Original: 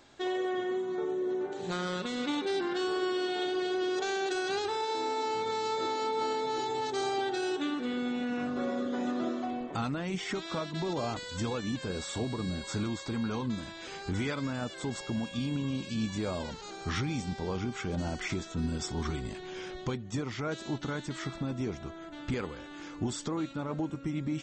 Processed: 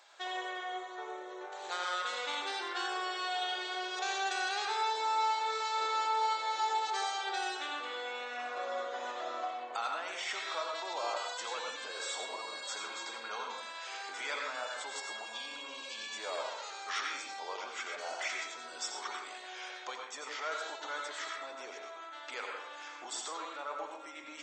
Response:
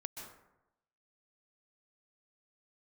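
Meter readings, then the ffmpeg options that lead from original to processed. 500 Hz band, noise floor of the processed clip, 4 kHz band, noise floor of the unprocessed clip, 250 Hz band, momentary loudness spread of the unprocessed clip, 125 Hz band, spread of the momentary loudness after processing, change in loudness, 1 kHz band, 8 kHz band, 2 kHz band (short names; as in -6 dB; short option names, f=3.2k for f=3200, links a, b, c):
-9.0 dB, -47 dBFS, +1.0 dB, -45 dBFS, -22.0 dB, 5 LU, under -40 dB, 10 LU, -3.0 dB, +2.0 dB, +1.0 dB, +1.5 dB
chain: -filter_complex "[0:a]highpass=f=620:w=0.5412,highpass=f=620:w=1.3066[a];[1:a]atrim=start_sample=2205,asetrate=66150,aresample=44100[b];[a][b]afir=irnorm=-1:irlink=0,volume=7.5dB"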